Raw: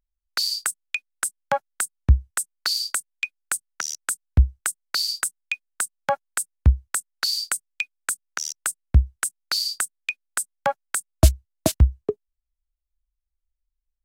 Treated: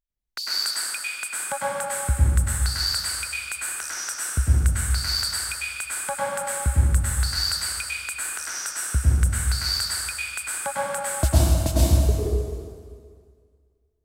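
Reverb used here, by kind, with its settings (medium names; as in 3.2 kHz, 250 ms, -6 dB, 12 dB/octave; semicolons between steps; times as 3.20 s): plate-style reverb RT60 2 s, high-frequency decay 0.85×, pre-delay 90 ms, DRR -8 dB; trim -8 dB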